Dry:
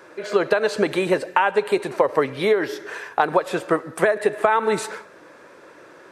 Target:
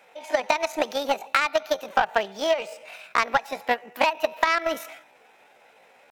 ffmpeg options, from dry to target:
-af "asetrate=66075,aresample=44100,atempo=0.66742,aeval=exprs='0.75*(cos(1*acos(clip(val(0)/0.75,-1,1)))-cos(1*PI/2))+0.0596*(cos(7*acos(clip(val(0)/0.75,-1,1)))-cos(7*PI/2))':c=same,volume=0.794"

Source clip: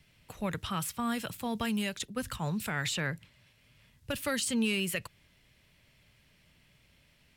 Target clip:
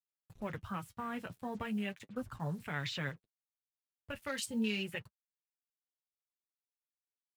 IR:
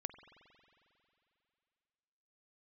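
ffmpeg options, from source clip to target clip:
-filter_complex "[0:a]afwtdn=0.0112,asettb=1/sr,asplit=3[s0][s1][s2];[s0]atrim=end=3.094[s3];[s1]atrim=start=3.09:end=4.45,asetpts=PTS-STARTPTS,afade=t=in:d=0.004:c=qsin,afade=t=out:st=1.356:d=0.004:c=qsin,equalizer=f=160:w=0.43:g=-6[s4];[s2]atrim=start=4.446[s5];[s3][s4]acrossfade=d=0.004:c1=hsin:c2=qsin[s6];[s6][s5]acrossfade=d=0.004:c1=qsin:c2=hsin,acrusher=bits=8:mix=0:aa=0.5,flanger=delay=6.9:depth=4.4:regen=-34:speed=0.37:shape=sinusoidal,volume=0.841"

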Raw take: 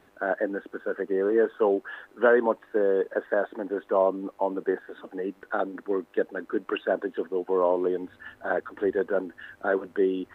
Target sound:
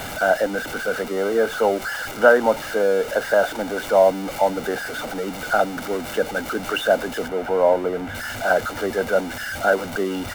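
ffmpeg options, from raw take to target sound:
-filter_complex "[0:a]aeval=exprs='val(0)+0.5*0.0282*sgn(val(0))':c=same,aecho=1:1:1.4:0.61,asettb=1/sr,asplit=3[s0][s1][s2];[s0]atrim=end=7.284[s3];[s1]atrim=start=7.28:end=8.15,asetpts=PTS-STARTPTS,afade=t=in:d=0.004:c=qsin,afade=t=out:st=0.866:d=0.004:c=qsin,acrossover=split=2700[s4][s5];[s5]acompressor=threshold=0.00282:ratio=4:attack=1:release=60[s6];[s4][s6]amix=inputs=2:normalize=0[s7];[s2]atrim=start=8.146[s8];[s3][s7]acrossfade=d=0.004:c1=hsin:c2=qsin[s9];[s9][s8]acrossfade=d=0.004:c1=qsin:c2=hsin,volume=1.68"

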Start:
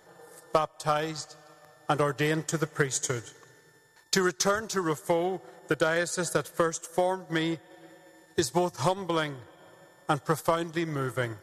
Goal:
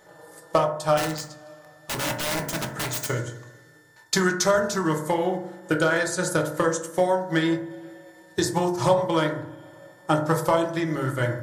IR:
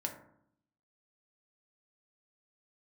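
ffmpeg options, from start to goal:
-filter_complex "[0:a]asettb=1/sr,asplit=3[s0][s1][s2];[s0]atrim=end=0.974[s3];[s1]atrim=start=0.97:end=3.07,asetpts=PTS-STARTPTS,afade=t=in:d=0.004:c=qsin,afade=t=out:st=2.096:d=0.004:c=qsin,aeval=exprs='(mod(18.8*val(0)+1,2)-1)/18.8':c=same[s4];[s2]atrim=start=3.066[s5];[s3][s4]acrossfade=d=0.004:c1=hsin:c2=qsin[s6];[s6][s5]acrossfade=d=0.004:c1=qsin:c2=hsin[s7];[1:a]atrim=start_sample=2205[s8];[s7][s8]afir=irnorm=-1:irlink=0,volume=1.5"

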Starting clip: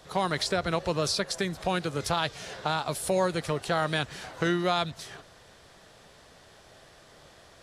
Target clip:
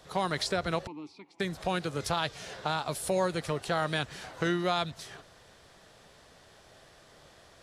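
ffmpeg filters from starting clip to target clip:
-filter_complex "[0:a]asettb=1/sr,asplit=3[s0][s1][s2];[s0]atrim=end=0.874[s3];[s1]atrim=start=0.87:end=1.4,asetpts=PTS-STARTPTS,afade=t=in:d=0.004:c=qsin,afade=t=out:st=0.526:d=0.004:c=qsin,asplit=3[s4][s5][s6];[s4]bandpass=f=300:t=q:w=8,volume=1[s7];[s5]bandpass=f=870:t=q:w=8,volume=0.501[s8];[s6]bandpass=f=2240:t=q:w=8,volume=0.355[s9];[s7][s8][s9]amix=inputs=3:normalize=0[s10];[s2]atrim=start=1.396[s11];[s3][s10]acrossfade=d=0.004:c1=hsin:c2=qsin[s12];[s12][s11]acrossfade=d=0.004:c1=qsin:c2=hsin,volume=0.75"

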